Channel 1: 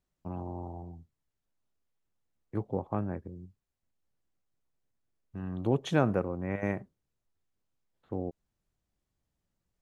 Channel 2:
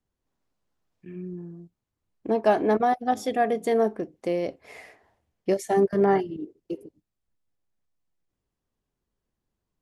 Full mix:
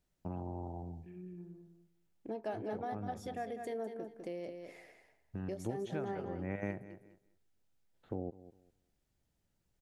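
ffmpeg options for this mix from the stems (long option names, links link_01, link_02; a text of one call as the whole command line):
ffmpeg -i stem1.wav -i stem2.wav -filter_complex "[0:a]volume=2.5dB,asplit=2[link_01][link_02];[link_02]volume=-21dB[link_03];[1:a]volume=-12dB,asplit=3[link_04][link_05][link_06];[link_05]volume=-8.5dB[link_07];[link_06]apad=whole_len=432832[link_08];[link_01][link_08]sidechaincompress=threshold=-43dB:ratio=8:attack=48:release=240[link_09];[link_03][link_07]amix=inputs=2:normalize=0,aecho=0:1:201|402|603:1|0.17|0.0289[link_10];[link_09][link_04][link_10]amix=inputs=3:normalize=0,equalizer=frequency=1100:width=7.4:gain=-8.5,acompressor=threshold=-41dB:ratio=2" out.wav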